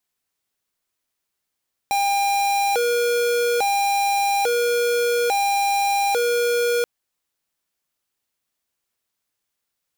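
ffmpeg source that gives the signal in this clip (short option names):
-f lavfi -i "aevalsrc='0.1*(2*lt(mod((639.5*t+161.5/0.59*(0.5-abs(mod(0.59*t,1)-0.5))),1),0.5)-1)':d=4.93:s=44100"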